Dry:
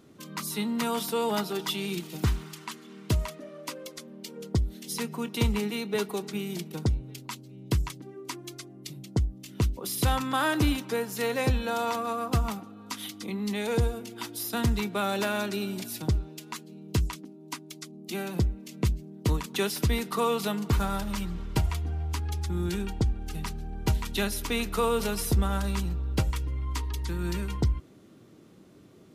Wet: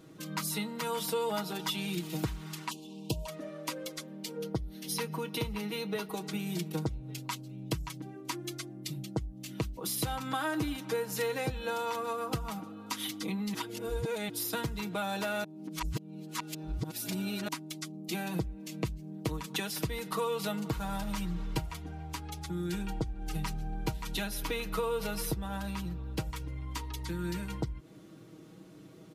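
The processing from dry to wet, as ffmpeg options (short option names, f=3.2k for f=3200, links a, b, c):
-filter_complex "[0:a]asplit=3[a][b][c];[a]afade=t=out:st=2.69:d=0.02[d];[b]asuperstop=centerf=1600:order=12:qfactor=1,afade=t=in:st=2.69:d=0.02,afade=t=out:st=3.26:d=0.02[e];[c]afade=t=in:st=3.26:d=0.02[f];[d][e][f]amix=inputs=3:normalize=0,asettb=1/sr,asplit=3[g][h][i];[g]atrim=end=4.364[j];[h]atrim=start=4.36:end=6.12,asetpts=PTS-STARTPTS,afade=t=in:d=0.004:c=qsin,afade=t=out:st=1.756:d=0.004:c=qsin,equalizer=f=7.5k:t=o:w=0.27:g=-10[k];[i]atrim=start=6.116[l];[j][k]acrossfade=d=0.004:c1=hsin:c2=qsin[m];[m][l]acrossfade=d=0.004:c1=qsin:c2=hsin,asettb=1/sr,asplit=3[n][o][p];[n]atrim=end=24.264[q];[o]atrim=start=24.26:end=26.07,asetpts=PTS-STARTPTS,afade=t=in:d=0.004:c=qsin,afade=t=out:st=1.806:d=0.004:c=qsin,equalizer=f=7.8k:t=o:w=1:g=-5[r];[p]atrim=start=26.066[s];[q][r]acrossfade=d=0.004:c1=hsin:c2=qsin[t];[t][s]acrossfade=d=0.004:c1=qsin:c2=hsin,asplit=5[u][v][w][x][y];[u]atrim=end=13.542[z];[v]atrim=start=13.538:end=14.292,asetpts=PTS-STARTPTS,areverse[aa];[w]atrim=start=14.288:end=15.442[ab];[x]atrim=start=15.438:end=17.482,asetpts=PTS-STARTPTS,areverse[ac];[y]atrim=start=17.478[ad];[z][aa]acrossfade=d=0.004:c1=hsin:c2=hsin[ae];[ae][ab]acrossfade=d=0.004:c1=hsin:c2=hsin[af];[af][ac]acrossfade=d=0.004:c1=hsin:c2=hsin[ag];[ag][ad]acrossfade=d=0.004:c1=hsin:c2=hsin,acompressor=threshold=-32dB:ratio=6,aecho=1:1:6.3:0.67"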